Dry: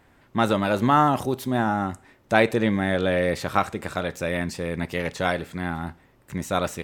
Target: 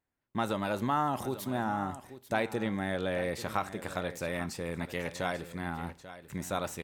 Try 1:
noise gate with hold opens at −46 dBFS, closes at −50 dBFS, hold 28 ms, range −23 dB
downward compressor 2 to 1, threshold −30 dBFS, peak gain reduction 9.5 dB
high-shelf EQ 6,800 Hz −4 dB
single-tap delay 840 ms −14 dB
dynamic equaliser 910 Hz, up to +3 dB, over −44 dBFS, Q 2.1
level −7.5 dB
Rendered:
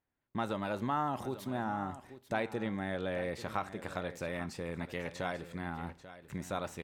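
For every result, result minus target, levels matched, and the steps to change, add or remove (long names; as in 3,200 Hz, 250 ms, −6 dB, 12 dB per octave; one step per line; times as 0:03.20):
8,000 Hz band −4.5 dB; downward compressor: peak gain reduction +3.5 dB
change: high-shelf EQ 6,800 Hz +6 dB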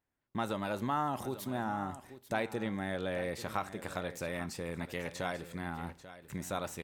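downward compressor: peak gain reduction +3.5 dB
change: downward compressor 2 to 1, threshold −23 dBFS, peak gain reduction 6 dB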